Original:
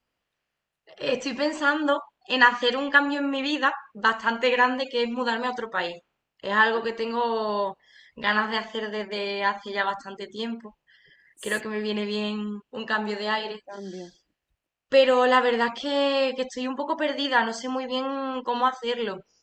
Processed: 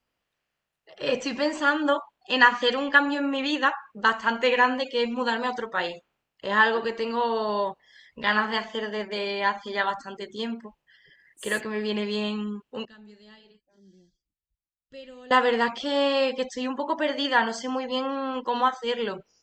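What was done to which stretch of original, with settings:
0:12.85–0:15.31: guitar amp tone stack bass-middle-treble 10-0-1

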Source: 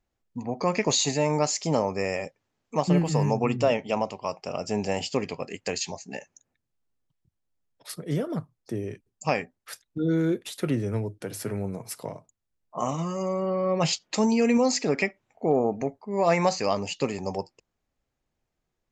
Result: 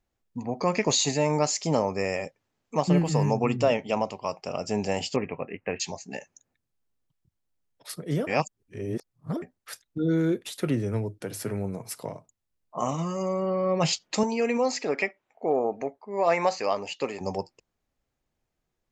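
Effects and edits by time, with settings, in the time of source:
0:05.16–0:05.80: Butterworth low-pass 2,700 Hz 72 dB per octave
0:08.27–0:09.42: reverse
0:14.23–0:17.21: bass and treble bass −14 dB, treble −7 dB

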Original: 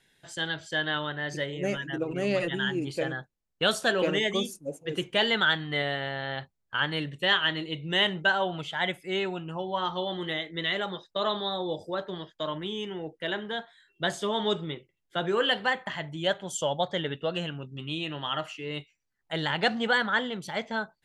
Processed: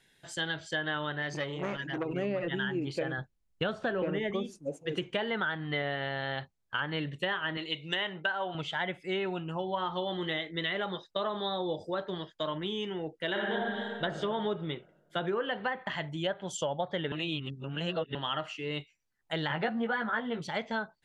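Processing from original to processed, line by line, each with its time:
0:01.22–0:02.05: saturating transformer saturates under 1,000 Hz
0:03.18–0:04.31: low-shelf EQ 140 Hz +10.5 dB
0:07.57–0:08.55: spectral tilt +3 dB per octave
0:13.31–0:14.03: thrown reverb, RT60 1.8 s, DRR −5 dB
0:17.12–0:18.15: reverse
0:19.49–0:20.47: double-tracking delay 13 ms −2.5 dB
whole clip: treble cut that deepens with the level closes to 1,800 Hz, closed at −23 dBFS; downward compressor, threshold −28 dBFS

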